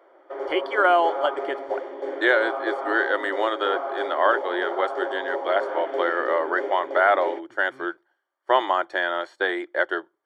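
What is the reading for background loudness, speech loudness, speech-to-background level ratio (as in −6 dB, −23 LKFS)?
−31.0 LKFS, −24.0 LKFS, 7.0 dB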